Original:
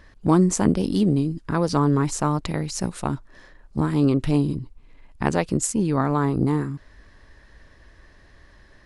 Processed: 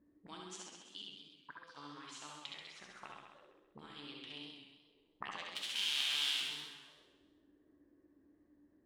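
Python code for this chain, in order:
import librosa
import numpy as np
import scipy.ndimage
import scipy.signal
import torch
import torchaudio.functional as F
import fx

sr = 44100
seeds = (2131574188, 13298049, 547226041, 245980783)

y = fx.envelope_flatten(x, sr, power=0.1, at=(5.55, 6.4), fade=0.02)
y = fx.auto_wah(y, sr, base_hz=260.0, top_hz=3200.0, q=5.6, full_db=-21.5, direction='up')
y = fx.comb_fb(y, sr, f0_hz=73.0, decay_s=0.64, harmonics='all', damping=0.0, mix_pct=70)
y = fx.level_steps(y, sr, step_db=17, at=(0.61, 1.76), fade=0.02)
y = fx.room_early_taps(y, sr, ms=(66, 76), db=(-4.5, -5.5))
y = fx.echo_warbled(y, sr, ms=130, feedback_pct=46, rate_hz=2.8, cents=113, wet_db=-6.0)
y = y * librosa.db_to_amplitude(3.0)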